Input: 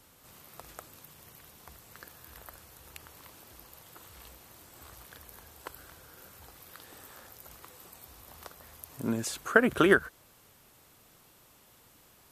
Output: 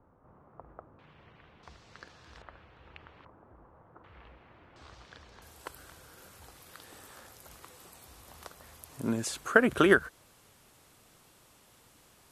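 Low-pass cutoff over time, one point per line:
low-pass 24 dB/octave
1.2 kHz
from 0.99 s 2.9 kHz
from 1.63 s 5.6 kHz
from 2.42 s 3 kHz
from 3.25 s 1.3 kHz
from 4.04 s 2.6 kHz
from 4.76 s 5.5 kHz
from 5.42 s 12 kHz

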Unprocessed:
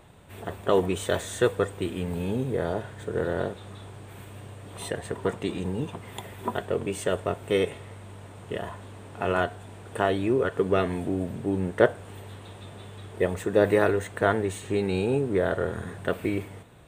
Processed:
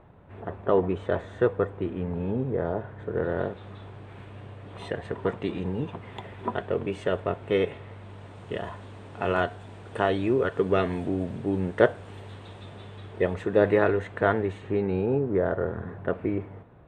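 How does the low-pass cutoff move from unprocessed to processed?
2.87 s 1.5 kHz
3.67 s 3 kHz
7.84 s 3 kHz
8.40 s 5.3 kHz
12.56 s 5.3 kHz
13.74 s 2.9 kHz
14.33 s 2.9 kHz
14.98 s 1.4 kHz

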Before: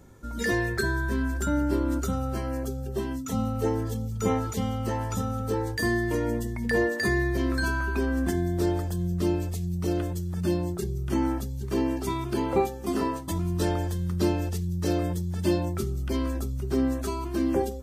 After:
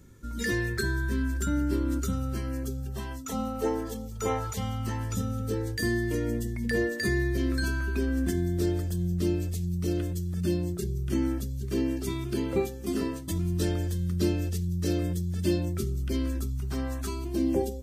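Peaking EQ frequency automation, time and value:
peaking EQ -14 dB 1.1 oct
2.76 s 750 Hz
3.39 s 110 Hz
4.01 s 110 Hz
5.17 s 890 Hz
16.29 s 890 Hz
16.89 s 290 Hz
17.29 s 1.3 kHz

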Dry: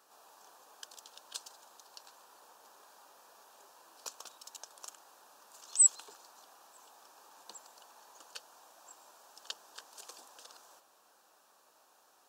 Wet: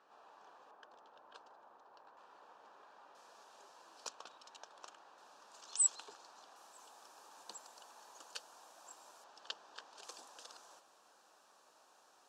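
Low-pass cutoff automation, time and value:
2.7 kHz
from 0.71 s 1.4 kHz
from 2.17 s 2.7 kHz
from 3.15 s 6.2 kHz
from 4.09 s 3.4 kHz
from 5.18 s 5.7 kHz
from 6.56 s 10 kHz
from 9.24 s 4.2 kHz
from 10.03 s 8.3 kHz

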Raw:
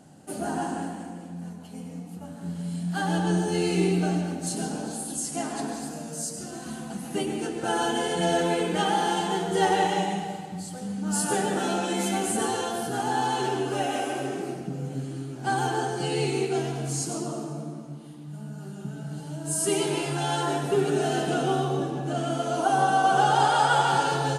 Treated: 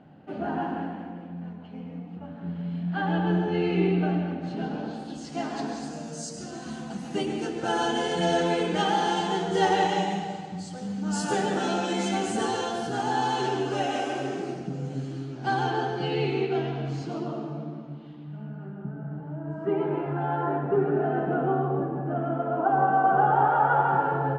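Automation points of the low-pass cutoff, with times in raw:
low-pass 24 dB/octave
4.54 s 3 kHz
5.91 s 6.7 kHz
14.99 s 6.7 kHz
16.24 s 3.6 kHz
18.23 s 3.6 kHz
18.94 s 1.6 kHz

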